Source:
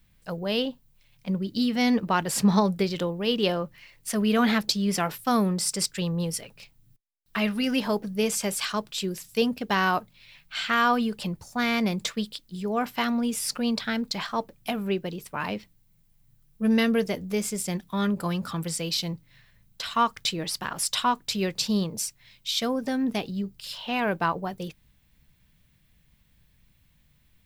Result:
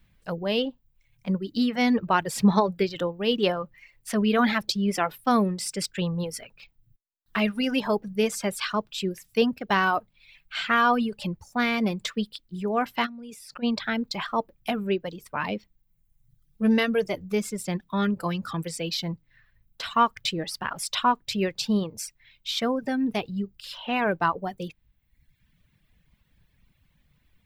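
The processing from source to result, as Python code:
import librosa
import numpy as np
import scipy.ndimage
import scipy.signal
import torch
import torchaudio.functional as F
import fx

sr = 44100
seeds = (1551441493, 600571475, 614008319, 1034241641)

y = fx.dereverb_blind(x, sr, rt60_s=1.1)
y = fx.level_steps(y, sr, step_db=21, at=(13.05, 13.62), fade=0.02)
y = fx.bass_treble(y, sr, bass_db=-1, treble_db=-8)
y = y * librosa.db_to_amplitude(2.5)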